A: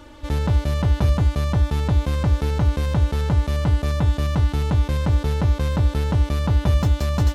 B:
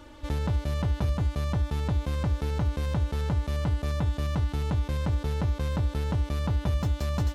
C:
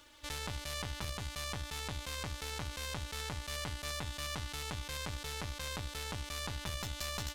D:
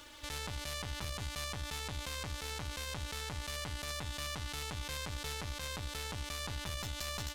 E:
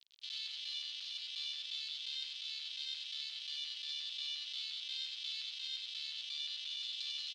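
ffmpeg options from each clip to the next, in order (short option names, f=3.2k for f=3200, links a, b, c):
-af "acompressor=threshold=-21dB:ratio=2,volume=-4.5dB"
-af "tiltshelf=f=1.2k:g=-10,aeval=exprs='sgn(val(0))*max(abs(val(0))-0.00106,0)':c=same,aeval=exprs='0.141*(cos(1*acos(clip(val(0)/0.141,-1,1)))-cos(1*PI/2))+0.0316*(cos(4*acos(clip(val(0)/0.141,-1,1)))-cos(4*PI/2))':c=same,volume=-6.5dB"
-af "alimiter=level_in=7dB:limit=-24dB:level=0:latency=1:release=154,volume=-7dB,volume=6.5dB"
-af "acrusher=bits=6:mix=0:aa=0.000001,asuperpass=centerf=3700:order=4:qfactor=2.3,aecho=1:1:95:0.668,volume=3.5dB"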